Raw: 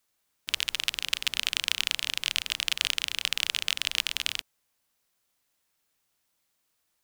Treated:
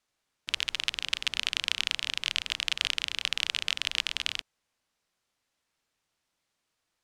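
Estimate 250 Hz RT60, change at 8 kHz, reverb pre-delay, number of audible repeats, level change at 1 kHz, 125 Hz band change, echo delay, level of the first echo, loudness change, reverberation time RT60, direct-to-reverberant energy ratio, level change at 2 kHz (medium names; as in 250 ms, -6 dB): no reverb, -5.0 dB, no reverb, no echo, -0.5 dB, no reading, no echo, no echo, -1.5 dB, no reverb, no reverb, -1.0 dB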